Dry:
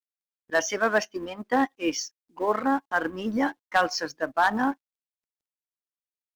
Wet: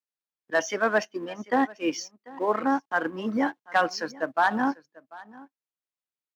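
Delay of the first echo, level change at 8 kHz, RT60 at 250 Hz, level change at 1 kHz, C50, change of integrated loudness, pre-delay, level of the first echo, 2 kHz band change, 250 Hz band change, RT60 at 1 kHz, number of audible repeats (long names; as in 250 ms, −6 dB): 742 ms, −4.5 dB, no reverb audible, 0.0 dB, no reverb audible, −0.5 dB, no reverb audible, −21.5 dB, −0.5 dB, 0.0 dB, no reverb audible, 1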